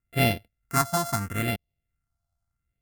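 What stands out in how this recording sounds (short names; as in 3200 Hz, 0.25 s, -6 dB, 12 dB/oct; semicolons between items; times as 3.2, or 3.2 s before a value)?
a buzz of ramps at a fixed pitch in blocks of 64 samples; phasing stages 4, 0.76 Hz, lowest notch 410–1200 Hz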